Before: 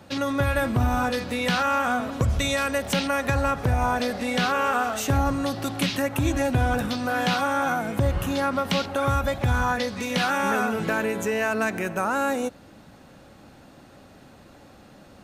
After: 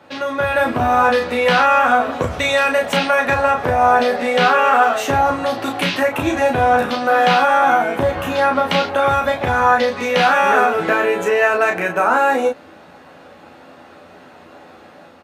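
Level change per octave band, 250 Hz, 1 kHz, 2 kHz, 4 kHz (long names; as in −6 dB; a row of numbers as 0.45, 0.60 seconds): +2.0, +11.5, +9.5, +6.0 decibels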